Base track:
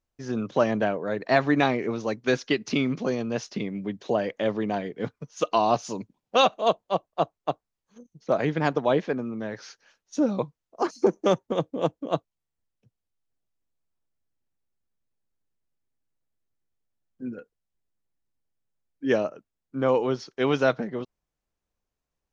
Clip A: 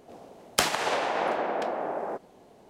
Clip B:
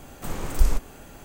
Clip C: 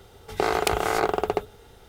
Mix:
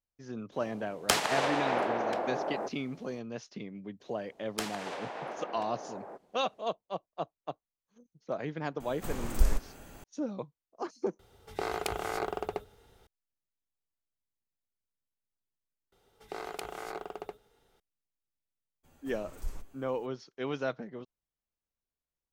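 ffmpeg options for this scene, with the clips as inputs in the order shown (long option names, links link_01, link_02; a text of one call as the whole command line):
ffmpeg -i bed.wav -i cue0.wav -i cue1.wav -i cue2.wav -filter_complex "[1:a]asplit=2[link_01][link_02];[2:a]asplit=2[link_03][link_04];[3:a]asplit=2[link_05][link_06];[0:a]volume=-11.5dB[link_07];[link_06]equalizer=frequency=75:width=1.5:gain=-14.5[link_08];[link_04]asplit=2[link_09][link_10];[link_10]adelay=8.7,afreqshift=-1.9[link_11];[link_09][link_11]amix=inputs=2:normalize=1[link_12];[link_07]asplit=3[link_13][link_14][link_15];[link_13]atrim=end=11.194[link_16];[link_05]atrim=end=1.88,asetpts=PTS-STARTPTS,volume=-10.5dB[link_17];[link_14]atrim=start=13.066:end=15.924[link_18];[link_08]atrim=end=1.88,asetpts=PTS-STARTPTS,volume=-16.5dB[link_19];[link_15]atrim=start=17.796[link_20];[link_01]atrim=end=2.69,asetpts=PTS-STARTPTS,volume=-2.5dB,afade=type=in:duration=0.02,afade=type=out:start_time=2.67:duration=0.02,adelay=510[link_21];[link_02]atrim=end=2.69,asetpts=PTS-STARTPTS,volume=-12.5dB,afade=type=in:duration=0.004:curve=hsin,afade=type=out:start_time=2.686:duration=0.004:curve=hsin,adelay=4000[link_22];[link_03]atrim=end=1.24,asetpts=PTS-STARTPTS,volume=-5.5dB,afade=type=in:duration=0.004:curve=hsin,afade=type=out:start_time=1.236:duration=0.004:curve=hsin,adelay=8800[link_23];[link_12]atrim=end=1.24,asetpts=PTS-STARTPTS,volume=-16dB,afade=type=in:duration=0.02,afade=type=out:start_time=1.22:duration=0.02,adelay=18830[link_24];[link_16][link_17]acrossfade=duration=0.004:curve1=hsin:curve2=hsin[link_25];[link_25][link_18]acrossfade=duration=0.004:curve1=hsin:curve2=hsin[link_26];[link_26][link_19]acrossfade=duration=0.004:curve1=hsin:curve2=hsin[link_27];[link_27][link_20]acrossfade=duration=0.004:curve1=hsin:curve2=hsin[link_28];[link_28][link_21][link_22][link_23][link_24]amix=inputs=5:normalize=0" out.wav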